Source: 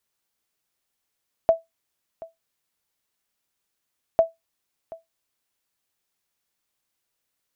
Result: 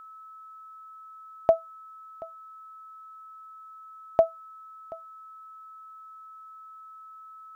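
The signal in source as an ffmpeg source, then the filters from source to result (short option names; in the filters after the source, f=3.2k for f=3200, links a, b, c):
-f lavfi -i "aevalsrc='0.398*(sin(2*PI*658*mod(t,2.7))*exp(-6.91*mod(t,2.7)/0.17)+0.0891*sin(2*PI*658*max(mod(t,2.7)-0.73,0))*exp(-6.91*max(mod(t,2.7)-0.73,0)/0.17))':d=5.4:s=44100"
-af "aeval=exprs='val(0)+0.00631*sin(2*PI*1300*n/s)':c=same"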